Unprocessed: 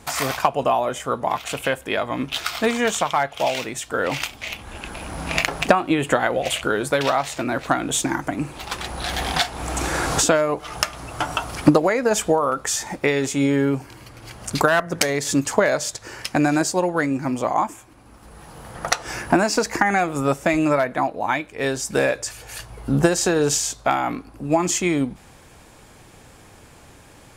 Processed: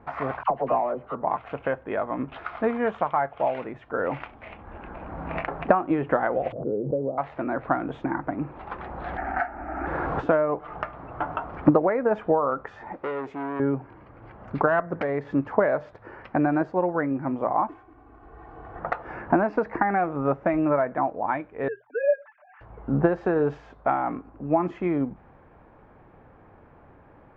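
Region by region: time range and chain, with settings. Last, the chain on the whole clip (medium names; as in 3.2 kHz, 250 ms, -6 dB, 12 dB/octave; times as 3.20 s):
0.43–1.15 s: median filter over 25 samples + peaking EQ 82 Hz -3 dB 2 oct + phase dispersion lows, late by 60 ms, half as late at 950 Hz
6.52–7.18 s: elliptic band-pass 110–530 Hz, stop band 60 dB + swell ahead of each attack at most 74 dB/s
9.17–9.87 s: dynamic bell 1.3 kHz, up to +8 dB, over -39 dBFS, Q 1.5 + static phaser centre 710 Hz, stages 8
12.92–13.60 s: tone controls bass -8 dB, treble +8 dB + transformer saturation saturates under 3.5 kHz
17.68–18.80 s: CVSD coder 64 kbps + comb 2.7 ms, depth 82%
21.68–22.61 s: formants replaced by sine waves + band-pass 580–2200 Hz + comb 6.8 ms, depth 70%
whole clip: Bessel low-pass 1.1 kHz, order 4; bass shelf 460 Hz -5 dB; hum notches 60/120 Hz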